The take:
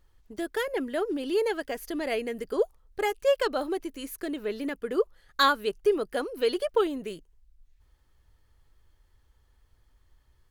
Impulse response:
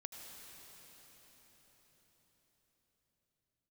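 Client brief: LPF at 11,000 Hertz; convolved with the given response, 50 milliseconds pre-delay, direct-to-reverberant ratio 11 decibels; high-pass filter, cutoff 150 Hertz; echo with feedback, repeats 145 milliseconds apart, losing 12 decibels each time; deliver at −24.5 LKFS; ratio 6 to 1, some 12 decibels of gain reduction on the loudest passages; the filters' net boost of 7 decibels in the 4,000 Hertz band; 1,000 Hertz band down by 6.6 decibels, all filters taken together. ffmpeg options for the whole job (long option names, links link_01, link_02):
-filter_complex "[0:a]highpass=150,lowpass=11000,equalizer=frequency=1000:width_type=o:gain=-9,equalizer=frequency=4000:width_type=o:gain=8.5,acompressor=threshold=-28dB:ratio=6,aecho=1:1:145|290|435:0.251|0.0628|0.0157,asplit=2[link_01][link_02];[1:a]atrim=start_sample=2205,adelay=50[link_03];[link_02][link_03]afir=irnorm=-1:irlink=0,volume=-7.5dB[link_04];[link_01][link_04]amix=inputs=2:normalize=0,volume=9dB"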